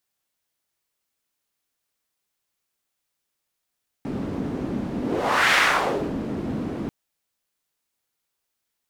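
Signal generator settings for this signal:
pass-by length 2.84 s, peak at 0:01.50, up 0.59 s, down 0.63 s, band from 250 Hz, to 1,900 Hz, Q 1.8, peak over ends 10.5 dB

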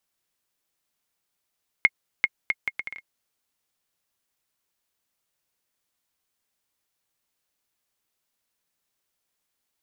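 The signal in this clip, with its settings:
bouncing ball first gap 0.39 s, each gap 0.67, 2,150 Hz, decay 42 ms −4 dBFS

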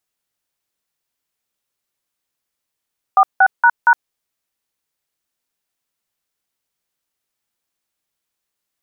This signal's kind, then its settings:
touch tones "46##", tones 62 ms, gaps 171 ms, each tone −9.5 dBFS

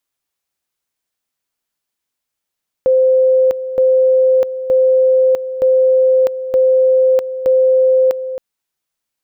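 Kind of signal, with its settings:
tone at two levels in turn 519 Hz −8 dBFS, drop 12 dB, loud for 0.65 s, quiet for 0.27 s, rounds 6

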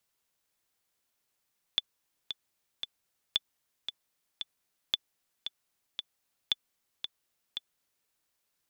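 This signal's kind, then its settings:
click track 114 BPM, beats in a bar 3, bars 4, 3,480 Hz, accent 9 dB −12.5 dBFS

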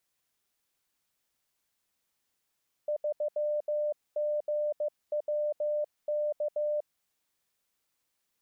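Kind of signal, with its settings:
Morse code "3GWK" 15 words per minute 597 Hz −27 dBFS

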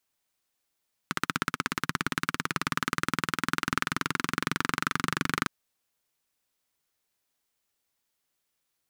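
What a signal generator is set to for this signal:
pulse-train model of a single-cylinder engine, changing speed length 4.36 s, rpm 1,900, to 2,900, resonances 170/250/1,300 Hz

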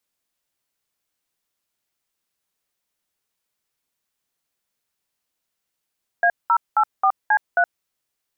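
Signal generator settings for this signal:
touch tones "A084C3", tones 70 ms, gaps 198 ms, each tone −16 dBFS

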